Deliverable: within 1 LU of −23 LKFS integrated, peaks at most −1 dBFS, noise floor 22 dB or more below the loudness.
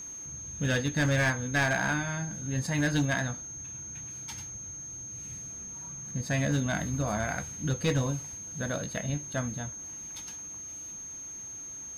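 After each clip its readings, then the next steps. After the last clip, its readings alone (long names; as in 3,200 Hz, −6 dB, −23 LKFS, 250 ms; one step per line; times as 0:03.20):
share of clipped samples 0.6%; peaks flattened at −21.0 dBFS; interfering tone 6,400 Hz; level of the tone −39 dBFS; integrated loudness −31.5 LKFS; sample peak −21.0 dBFS; target loudness −23.0 LKFS
→ clipped peaks rebuilt −21 dBFS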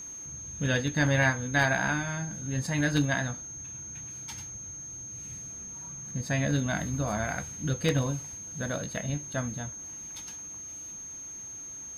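share of clipped samples 0.0%; interfering tone 6,400 Hz; level of the tone −39 dBFS
→ notch filter 6,400 Hz, Q 30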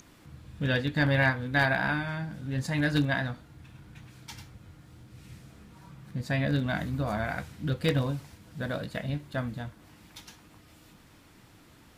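interfering tone none found; integrated loudness −29.5 LKFS; sample peak −11.5 dBFS; target loudness −23.0 LKFS
→ level +6.5 dB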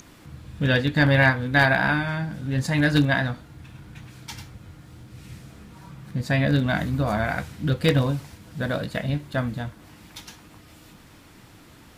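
integrated loudness −23.0 LKFS; sample peak −5.0 dBFS; background noise floor −50 dBFS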